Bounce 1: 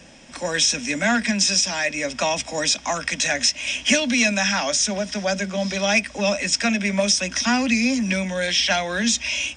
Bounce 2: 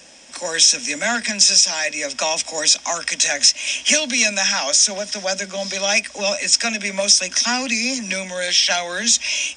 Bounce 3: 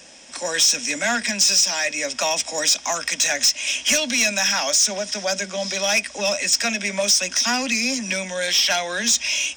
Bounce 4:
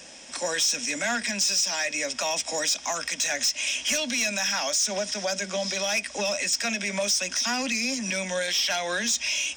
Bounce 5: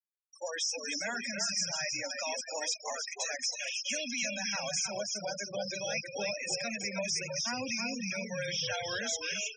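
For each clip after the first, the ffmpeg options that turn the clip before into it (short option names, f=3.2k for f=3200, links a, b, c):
-af "bass=f=250:g=-12,treble=f=4k:g=8"
-af "asoftclip=type=tanh:threshold=-11.5dB"
-af "alimiter=limit=-19dB:level=0:latency=1:release=122"
-filter_complex "[0:a]flanger=delay=3.6:depth=7.9:regen=-76:speed=0.5:shape=triangular,asplit=8[a][b][c][d][e][f][g][h];[b]adelay=316,afreqshift=-39,volume=-4.5dB[i];[c]adelay=632,afreqshift=-78,volume=-9.9dB[j];[d]adelay=948,afreqshift=-117,volume=-15.2dB[k];[e]adelay=1264,afreqshift=-156,volume=-20.6dB[l];[f]adelay=1580,afreqshift=-195,volume=-25.9dB[m];[g]adelay=1896,afreqshift=-234,volume=-31.3dB[n];[h]adelay=2212,afreqshift=-273,volume=-36.6dB[o];[a][i][j][k][l][m][n][o]amix=inputs=8:normalize=0,afftfilt=real='re*gte(hypot(re,im),0.0447)':imag='im*gte(hypot(re,im),0.0447)':win_size=1024:overlap=0.75,volume=-4dB"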